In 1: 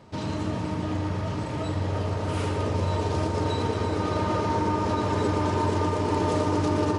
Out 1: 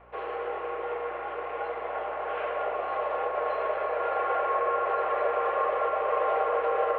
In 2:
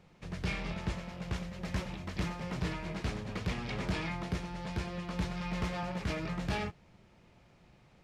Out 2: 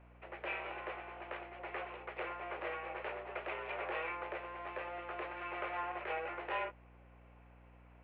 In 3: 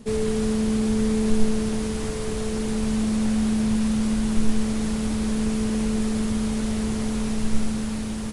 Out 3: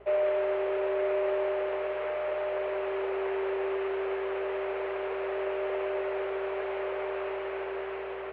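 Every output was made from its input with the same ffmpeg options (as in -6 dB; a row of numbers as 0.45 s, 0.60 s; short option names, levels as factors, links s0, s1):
-af "highpass=f=280:t=q:w=0.5412,highpass=f=280:t=q:w=1.307,lowpass=f=2500:t=q:w=0.5176,lowpass=f=2500:t=q:w=0.7071,lowpass=f=2500:t=q:w=1.932,afreqshift=170,aeval=exprs='val(0)+0.00112*(sin(2*PI*60*n/s)+sin(2*PI*2*60*n/s)/2+sin(2*PI*3*60*n/s)/3+sin(2*PI*4*60*n/s)/4+sin(2*PI*5*60*n/s)/5)':c=same"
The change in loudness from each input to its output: -2.5 LU, -4.5 LU, -6.5 LU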